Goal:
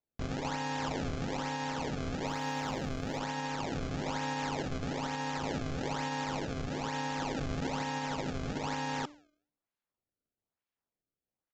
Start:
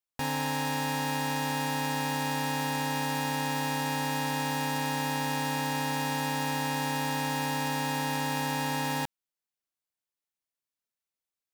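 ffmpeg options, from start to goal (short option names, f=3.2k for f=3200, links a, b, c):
-filter_complex "[0:a]highpass=150,highshelf=f=4.8k:g=-7.5,bandreject=f=295:t=h:w=4,bandreject=f=590:t=h:w=4,bandreject=f=885:t=h:w=4,bandreject=f=1.18k:t=h:w=4,bandreject=f=1.475k:t=h:w=4,bandreject=f=1.77k:t=h:w=4,bandreject=f=2.065k:t=h:w=4,bandreject=f=2.36k:t=h:w=4,bandreject=f=2.655k:t=h:w=4,bandreject=f=2.95k:t=h:w=4,bandreject=f=3.245k:t=h:w=4,bandreject=f=3.54k:t=h:w=4,bandreject=f=3.835k:t=h:w=4,bandreject=f=4.13k:t=h:w=4,bandreject=f=4.425k:t=h:w=4,bandreject=f=4.72k:t=h:w=4,bandreject=f=5.015k:t=h:w=4,bandreject=f=5.31k:t=h:w=4,bandreject=f=5.605k:t=h:w=4,bandreject=f=5.9k:t=h:w=4,bandreject=f=6.195k:t=h:w=4,bandreject=f=6.49k:t=h:w=4,bandreject=f=6.785k:t=h:w=4,bandreject=f=7.08k:t=h:w=4,bandreject=f=7.375k:t=h:w=4,bandreject=f=7.67k:t=h:w=4,bandreject=f=7.965k:t=h:w=4,bandreject=f=8.26k:t=h:w=4,bandreject=f=8.555k:t=h:w=4,bandreject=f=8.85k:t=h:w=4,bandreject=f=9.145k:t=h:w=4,bandreject=f=9.44k:t=h:w=4,bandreject=f=9.735k:t=h:w=4,bandreject=f=10.03k:t=h:w=4,bandreject=f=10.325k:t=h:w=4,bandreject=f=10.62k:t=h:w=4,bandreject=f=10.915k:t=h:w=4,bandreject=f=11.21k:t=h:w=4,alimiter=level_in=1.5dB:limit=-24dB:level=0:latency=1:release=127,volume=-1.5dB,acrusher=samples=27:mix=1:aa=0.000001:lfo=1:lforange=43.2:lforate=1.1,aresample=16000,aresample=44100,asettb=1/sr,asplit=3[a][b][c];[a]atrim=end=2.264[d];[b]atrim=start=2.26:end=3.18,asetpts=PTS-STARTPTS,afade=t=in:d=0.004:c=qsin,afade=t=out:st=0.916:d=0.004:c=qsin,aeval=exprs='sgn(val(0))*max(abs(val(0))-0.00126,0)':c=same[e];[c]atrim=start=3.176[f];[d][e]acrossfade=d=0.004:c1=hsin:c2=qsin[g];[g][f]acrossfade=d=0.004:c1=qsin:c2=hsin"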